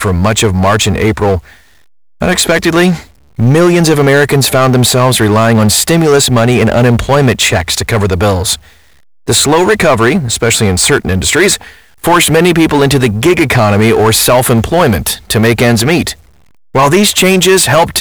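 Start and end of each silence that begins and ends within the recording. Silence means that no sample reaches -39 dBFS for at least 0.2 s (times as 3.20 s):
1.65–2.21 s
3.11–3.38 s
8.82–9.27 s
16.29–16.74 s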